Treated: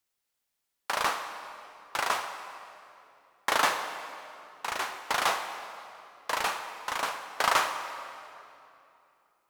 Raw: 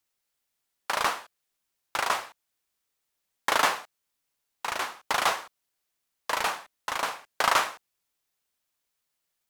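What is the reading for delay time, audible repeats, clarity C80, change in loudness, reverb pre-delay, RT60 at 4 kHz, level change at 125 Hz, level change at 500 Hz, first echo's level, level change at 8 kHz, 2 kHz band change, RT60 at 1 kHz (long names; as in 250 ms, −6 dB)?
no echo audible, no echo audible, 8.5 dB, −2.0 dB, 12 ms, 2.1 s, −1.5 dB, −1.0 dB, no echo audible, −1.5 dB, −1.0 dB, 2.7 s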